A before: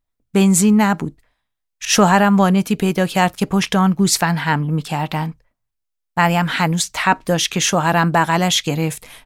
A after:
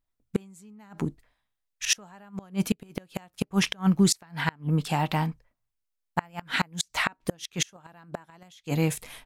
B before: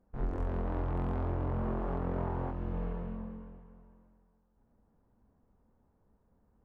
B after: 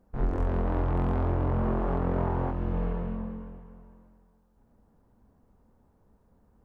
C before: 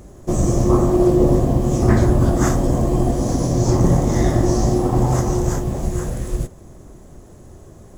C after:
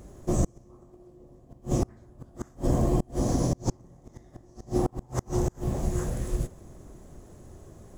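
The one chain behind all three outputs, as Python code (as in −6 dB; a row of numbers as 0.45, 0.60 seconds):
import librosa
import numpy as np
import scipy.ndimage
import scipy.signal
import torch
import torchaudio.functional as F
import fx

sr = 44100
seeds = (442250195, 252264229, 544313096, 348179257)

y = fx.gate_flip(x, sr, shuts_db=-7.0, range_db=-32)
y = y * 10.0 ** (-30 / 20.0) / np.sqrt(np.mean(np.square(y)))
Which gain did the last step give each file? −4.5, +6.5, −6.0 decibels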